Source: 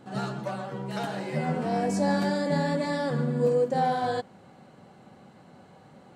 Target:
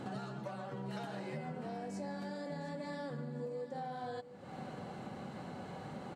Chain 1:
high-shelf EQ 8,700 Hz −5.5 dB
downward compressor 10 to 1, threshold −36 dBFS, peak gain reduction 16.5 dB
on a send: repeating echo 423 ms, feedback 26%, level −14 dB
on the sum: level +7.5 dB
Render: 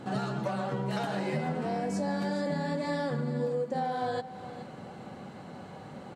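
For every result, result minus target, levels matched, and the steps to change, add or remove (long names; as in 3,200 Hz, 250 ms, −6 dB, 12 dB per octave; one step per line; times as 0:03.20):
downward compressor: peak gain reduction −11 dB; echo 289 ms early
change: downward compressor 10 to 1, threshold −48 dBFS, peak gain reduction 27.5 dB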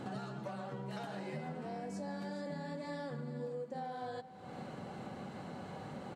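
echo 289 ms early
change: repeating echo 712 ms, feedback 26%, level −14 dB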